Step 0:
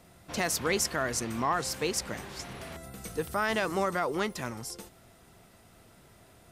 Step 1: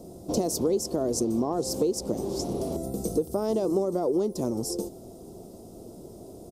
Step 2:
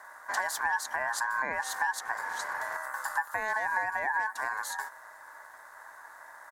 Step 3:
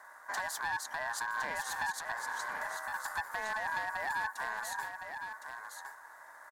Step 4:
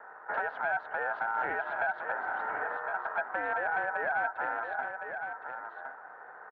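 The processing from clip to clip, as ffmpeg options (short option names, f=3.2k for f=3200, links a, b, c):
-af "firequalizer=gain_entry='entry(130,0);entry(190,5);entry(350,12);entry(1700,-29);entry(3400,-13);entry(5200,-2)':delay=0.05:min_phase=1,acompressor=threshold=-32dB:ratio=5,volume=8.5dB"
-af "aeval=exprs='val(0)*sin(2*PI*1300*n/s)':c=same,volume=-2dB"
-filter_complex "[0:a]asoftclip=type=hard:threshold=-24.5dB,asplit=2[a][b];[b]aecho=0:1:1062:0.447[c];[a][c]amix=inputs=2:normalize=0,volume=-4.5dB"
-af "highpass=f=310:t=q:w=0.5412,highpass=f=310:t=q:w=1.307,lowpass=f=2.6k:t=q:w=0.5176,lowpass=f=2.6k:t=q:w=0.7071,lowpass=f=2.6k:t=q:w=1.932,afreqshift=-160,volume=4.5dB"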